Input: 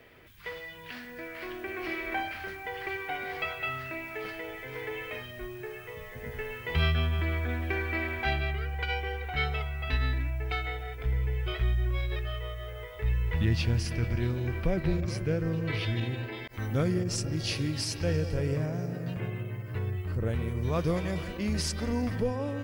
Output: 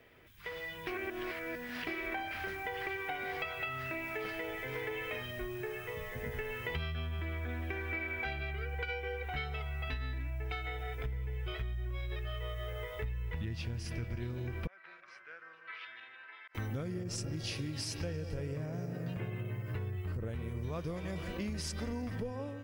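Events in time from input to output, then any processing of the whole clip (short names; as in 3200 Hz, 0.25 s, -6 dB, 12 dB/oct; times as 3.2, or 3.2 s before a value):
0.87–1.87 reverse
7.91–9.23 small resonant body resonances 480/1500/2300 Hz, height 9 dB
14.67–16.55 ladder band-pass 1600 Hz, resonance 50%
whole clip: compressor 10:1, threshold -36 dBFS; notch 4400 Hz, Q 22; AGC gain up to 7.5 dB; gain -6 dB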